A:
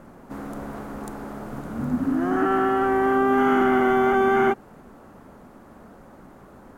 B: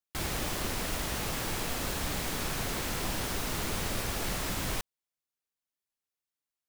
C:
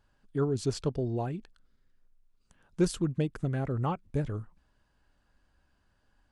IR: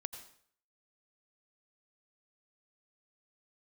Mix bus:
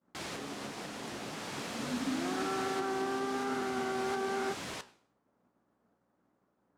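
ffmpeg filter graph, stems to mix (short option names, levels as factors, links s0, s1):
-filter_complex "[0:a]aeval=exprs='val(0)+0.00501*(sin(2*PI*60*n/s)+sin(2*PI*2*60*n/s)/2+sin(2*PI*3*60*n/s)/3+sin(2*PI*4*60*n/s)/4+sin(2*PI*5*60*n/s)/5)':c=same,volume=0.501[s0];[1:a]volume=0.794,asplit=2[s1][s2];[s2]volume=0.316[s3];[2:a]acompressor=threshold=0.0224:ratio=6,volume=0.355,asplit=2[s4][s5];[s5]apad=whole_len=294741[s6];[s1][s6]sidechaincompress=threshold=0.00562:ratio=8:attack=11:release=585[s7];[s0][s4]amix=inputs=2:normalize=0,agate=range=0.0224:threshold=0.0126:ratio=3:detection=peak,alimiter=limit=0.075:level=0:latency=1,volume=1[s8];[3:a]atrim=start_sample=2205[s9];[s3][s9]afir=irnorm=-1:irlink=0[s10];[s7][s8][s10]amix=inputs=3:normalize=0,flanger=delay=9:depth=9.8:regen=78:speed=1.1:shape=triangular,highpass=180,lowpass=7400"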